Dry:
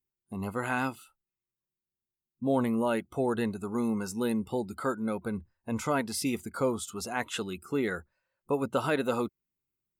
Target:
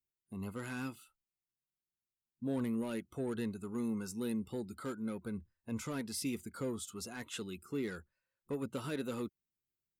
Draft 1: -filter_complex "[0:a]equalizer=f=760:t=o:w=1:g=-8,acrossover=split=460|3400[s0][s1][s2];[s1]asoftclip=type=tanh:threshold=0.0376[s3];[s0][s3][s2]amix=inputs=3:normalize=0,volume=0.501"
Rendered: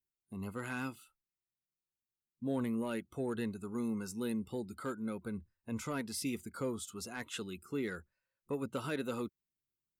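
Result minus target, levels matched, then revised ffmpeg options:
saturation: distortion -8 dB
-filter_complex "[0:a]equalizer=f=760:t=o:w=1:g=-8,acrossover=split=460|3400[s0][s1][s2];[s1]asoftclip=type=tanh:threshold=0.0133[s3];[s0][s3][s2]amix=inputs=3:normalize=0,volume=0.501"

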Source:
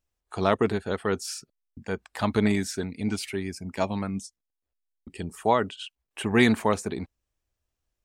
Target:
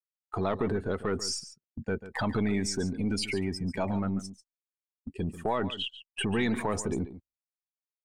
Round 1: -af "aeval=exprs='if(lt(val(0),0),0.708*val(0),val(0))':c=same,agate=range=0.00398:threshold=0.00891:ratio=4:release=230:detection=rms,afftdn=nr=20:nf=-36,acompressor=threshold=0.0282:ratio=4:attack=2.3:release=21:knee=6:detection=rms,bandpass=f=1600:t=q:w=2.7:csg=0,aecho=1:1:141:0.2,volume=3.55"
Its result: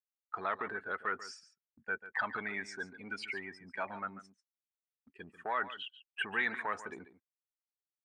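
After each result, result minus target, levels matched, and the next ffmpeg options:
2 kHz band +9.5 dB; compression: peak gain reduction -6.5 dB
-af "aeval=exprs='if(lt(val(0),0),0.708*val(0),val(0))':c=same,agate=range=0.00398:threshold=0.00891:ratio=4:release=230:detection=rms,afftdn=nr=20:nf=-36,acompressor=threshold=0.0282:ratio=4:attack=2.3:release=21:knee=6:detection=rms,aecho=1:1:141:0.2,volume=3.55"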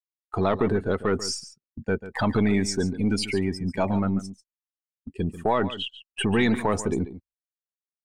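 compression: peak gain reduction -6.5 dB
-af "aeval=exprs='if(lt(val(0),0),0.708*val(0),val(0))':c=same,agate=range=0.00398:threshold=0.00891:ratio=4:release=230:detection=rms,afftdn=nr=20:nf=-36,acompressor=threshold=0.0106:ratio=4:attack=2.3:release=21:knee=6:detection=rms,aecho=1:1:141:0.2,volume=3.55"

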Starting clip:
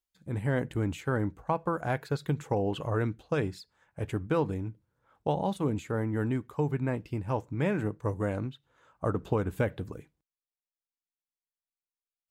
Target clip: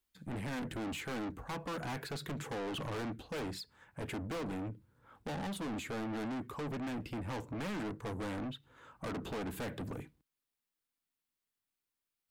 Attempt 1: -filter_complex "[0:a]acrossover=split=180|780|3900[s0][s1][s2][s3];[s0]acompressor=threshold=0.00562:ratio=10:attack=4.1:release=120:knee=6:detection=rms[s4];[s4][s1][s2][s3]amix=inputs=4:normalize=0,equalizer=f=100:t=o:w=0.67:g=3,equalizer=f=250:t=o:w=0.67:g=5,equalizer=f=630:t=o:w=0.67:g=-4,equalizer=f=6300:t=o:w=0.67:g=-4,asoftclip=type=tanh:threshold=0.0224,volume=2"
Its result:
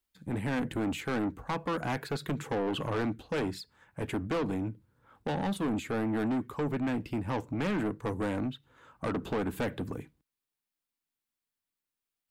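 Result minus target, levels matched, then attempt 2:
saturation: distortion -4 dB
-filter_complex "[0:a]acrossover=split=180|780|3900[s0][s1][s2][s3];[s0]acompressor=threshold=0.00562:ratio=10:attack=4.1:release=120:knee=6:detection=rms[s4];[s4][s1][s2][s3]amix=inputs=4:normalize=0,equalizer=f=100:t=o:w=0.67:g=3,equalizer=f=250:t=o:w=0.67:g=5,equalizer=f=630:t=o:w=0.67:g=-4,equalizer=f=6300:t=o:w=0.67:g=-4,asoftclip=type=tanh:threshold=0.00708,volume=2"

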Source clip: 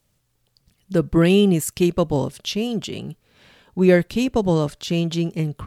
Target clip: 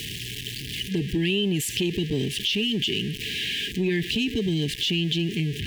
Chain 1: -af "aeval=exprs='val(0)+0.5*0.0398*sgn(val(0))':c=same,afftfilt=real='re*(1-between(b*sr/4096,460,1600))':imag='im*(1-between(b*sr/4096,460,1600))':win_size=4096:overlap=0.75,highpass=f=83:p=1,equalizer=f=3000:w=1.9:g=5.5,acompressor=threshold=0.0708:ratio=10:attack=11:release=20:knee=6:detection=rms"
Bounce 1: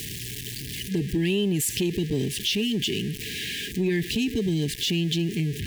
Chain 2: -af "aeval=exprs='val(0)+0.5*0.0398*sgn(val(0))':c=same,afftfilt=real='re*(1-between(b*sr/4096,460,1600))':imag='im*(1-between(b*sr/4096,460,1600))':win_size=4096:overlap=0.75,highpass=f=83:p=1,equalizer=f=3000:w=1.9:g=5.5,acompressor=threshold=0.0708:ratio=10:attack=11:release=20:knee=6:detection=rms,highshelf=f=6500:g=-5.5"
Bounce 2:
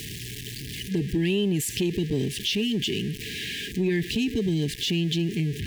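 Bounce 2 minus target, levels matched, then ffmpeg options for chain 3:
4 kHz band -3.0 dB
-af "aeval=exprs='val(0)+0.5*0.0398*sgn(val(0))':c=same,afftfilt=real='re*(1-between(b*sr/4096,460,1600))':imag='im*(1-between(b*sr/4096,460,1600))':win_size=4096:overlap=0.75,highpass=f=83:p=1,equalizer=f=3000:w=1.9:g=13.5,acompressor=threshold=0.0708:ratio=10:attack=11:release=20:knee=6:detection=rms,highshelf=f=6500:g=-5.5"

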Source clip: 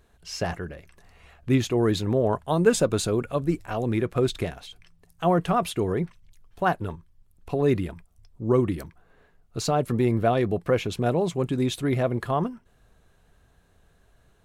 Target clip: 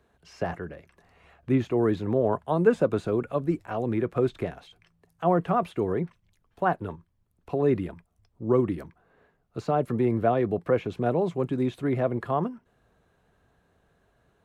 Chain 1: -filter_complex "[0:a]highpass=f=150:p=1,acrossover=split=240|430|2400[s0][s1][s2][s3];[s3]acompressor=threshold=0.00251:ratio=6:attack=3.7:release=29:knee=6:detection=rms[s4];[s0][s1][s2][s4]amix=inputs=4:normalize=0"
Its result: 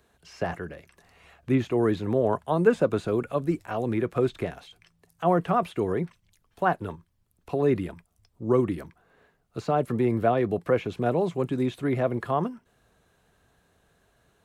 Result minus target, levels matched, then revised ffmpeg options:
8 kHz band +4.0 dB
-filter_complex "[0:a]highpass=f=150:p=1,highshelf=f=3000:g=-11,acrossover=split=240|430|2400[s0][s1][s2][s3];[s3]acompressor=threshold=0.00251:ratio=6:attack=3.7:release=29:knee=6:detection=rms[s4];[s0][s1][s2][s4]amix=inputs=4:normalize=0"

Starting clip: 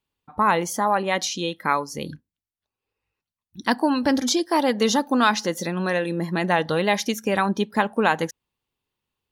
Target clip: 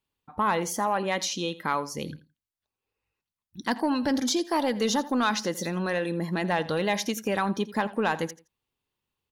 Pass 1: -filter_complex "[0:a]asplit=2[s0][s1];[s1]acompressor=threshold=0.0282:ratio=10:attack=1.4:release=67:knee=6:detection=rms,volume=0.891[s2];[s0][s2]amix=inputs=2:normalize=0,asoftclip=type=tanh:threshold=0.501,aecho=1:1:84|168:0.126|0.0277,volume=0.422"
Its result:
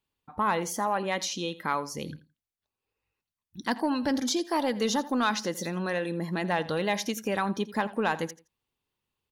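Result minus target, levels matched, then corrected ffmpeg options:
compression: peak gain reduction +9.5 dB
-filter_complex "[0:a]asplit=2[s0][s1];[s1]acompressor=threshold=0.0944:ratio=10:attack=1.4:release=67:knee=6:detection=rms,volume=0.891[s2];[s0][s2]amix=inputs=2:normalize=0,asoftclip=type=tanh:threshold=0.501,aecho=1:1:84|168:0.126|0.0277,volume=0.422"

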